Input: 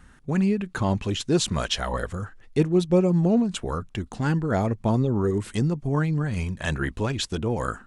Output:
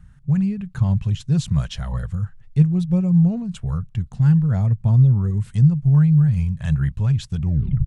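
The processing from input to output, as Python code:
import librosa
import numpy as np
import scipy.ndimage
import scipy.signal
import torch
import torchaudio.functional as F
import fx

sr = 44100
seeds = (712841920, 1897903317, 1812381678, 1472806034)

y = fx.tape_stop_end(x, sr, length_s=0.49)
y = fx.low_shelf_res(y, sr, hz=210.0, db=13.5, q=3.0)
y = y * librosa.db_to_amplitude(-8.5)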